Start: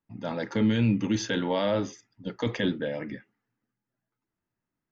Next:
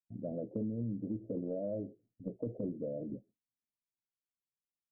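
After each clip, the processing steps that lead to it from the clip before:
noise gate with hold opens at −47 dBFS
Butterworth low-pass 680 Hz 96 dB per octave
downward compressor 5 to 1, threshold −31 dBFS, peak gain reduction 11.5 dB
level −3.5 dB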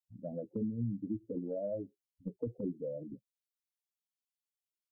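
spectral dynamics exaggerated over time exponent 2
level +4 dB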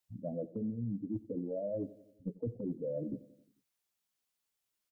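reversed playback
downward compressor, threshold −43 dBFS, peak gain reduction 12 dB
reversed playback
repeating echo 89 ms, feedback 58%, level −19 dB
level +8.5 dB

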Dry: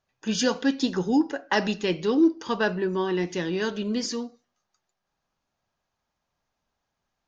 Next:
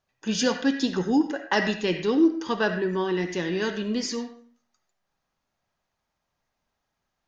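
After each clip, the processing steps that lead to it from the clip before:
on a send at −13 dB: parametric band 2,000 Hz +12.5 dB 0.82 octaves + convolution reverb RT60 0.50 s, pre-delay 30 ms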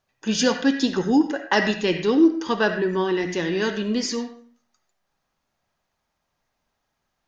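mains-hum notches 60/120/180 Hz
level +3.5 dB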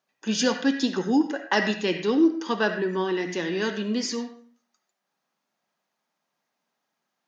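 Chebyshev high-pass filter 190 Hz, order 3
level −2.5 dB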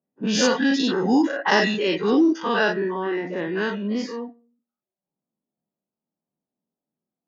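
every bin's largest magnitude spread in time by 120 ms
reverb reduction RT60 0.75 s
low-pass that shuts in the quiet parts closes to 320 Hz, open at −14.5 dBFS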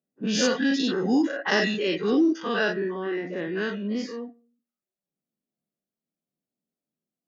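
parametric band 920 Hz −10 dB 0.37 octaves
level −3 dB

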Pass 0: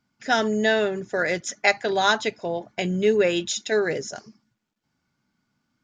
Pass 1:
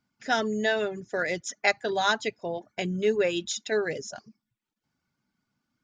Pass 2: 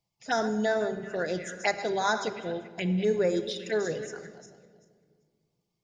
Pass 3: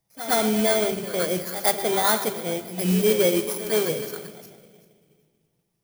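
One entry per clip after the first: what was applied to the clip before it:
reverb reduction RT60 0.52 s; level −4 dB
feedback delay that plays each chunk backwards 194 ms, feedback 40%, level −12 dB; phaser swept by the level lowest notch 250 Hz, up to 2,900 Hz, full sweep at −23 dBFS; convolution reverb RT60 1.8 s, pre-delay 6 ms, DRR 9 dB
samples in bit-reversed order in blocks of 16 samples; noise that follows the level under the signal 14 dB; backwards echo 113 ms −12.5 dB; level +5.5 dB

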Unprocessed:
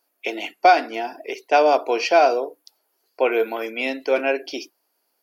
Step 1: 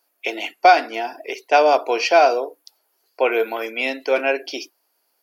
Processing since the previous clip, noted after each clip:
low-shelf EQ 290 Hz −9 dB
level +3 dB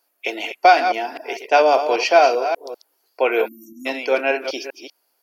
delay that plays each chunk backwards 196 ms, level −8.5 dB
time-frequency box erased 0:03.48–0:03.86, 340–5,500 Hz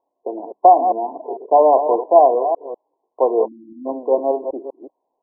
linear-phase brick-wall low-pass 1,100 Hz
level +2.5 dB

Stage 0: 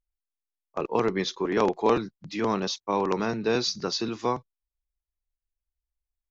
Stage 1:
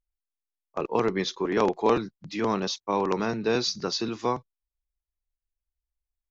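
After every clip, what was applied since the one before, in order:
no processing that can be heard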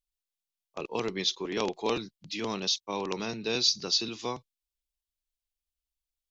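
high shelf with overshoot 2,200 Hz +9.5 dB, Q 1.5
level −7 dB

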